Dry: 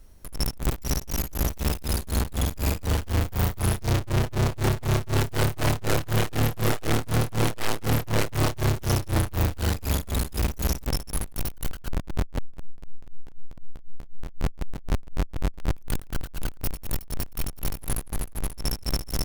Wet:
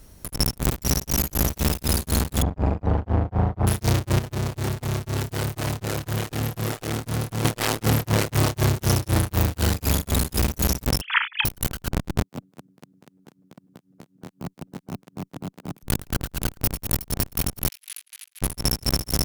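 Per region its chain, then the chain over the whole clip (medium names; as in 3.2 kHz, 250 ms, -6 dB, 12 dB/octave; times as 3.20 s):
2.42–3.67 s: low-pass 1.1 kHz + peaking EQ 760 Hz +5.5 dB 0.56 oct
4.19–7.45 s: compression 8:1, threshold -31 dBFS + overload inside the chain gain 29 dB
11.01–11.45 s: formants replaced by sine waves + high-pass 1.2 kHz 24 dB/octave + doubling 33 ms -8.5 dB
12.22–15.83 s: high-pass 160 Hz 24 dB/octave + valve stage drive 34 dB, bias 0.45
17.68–18.42 s: ladder high-pass 2.1 kHz, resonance 30% + treble shelf 7.1 kHz -10 dB
whole clip: high-pass 120 Hz 6 dB/octave; tone controls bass +5 dB, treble +3 dB; compression, threshold -23 dBFS; trim +6.5 dB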